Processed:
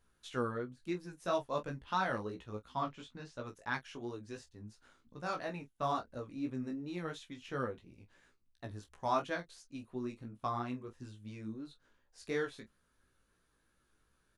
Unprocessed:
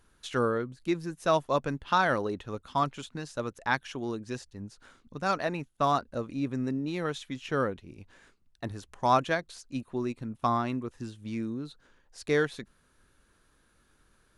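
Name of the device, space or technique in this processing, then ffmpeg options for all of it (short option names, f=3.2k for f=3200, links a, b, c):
double-tracked vocal: -filter_complex "[0:a]asettb=1/sr,asplit=3[a][b][c];[a]atrim=end=2.754[d];[b]atrim=start=2.75:end=3.44,asetpts=PTS-STARTPTS,afade=t=in:d=0.004:c=qsin,afade=t=out:st=0.686:d=0.004:c=qsin,lowpass=5.6k[e];[c]atrim=start=3.436[f];[d][e]acrossfade=d=0.004:c1=hsin:c2=qsin[g];[g][f]acrossfade=d=0.004:c1=qsin:c2=hsin,asplit=2[h][i];[i]adelay=28,volume=-11dB[j];[h][j]amix=inputs=2:normalize=0,flanger=delay=15.5:depth=3.4:speed=2.9,volume=-6.5dB"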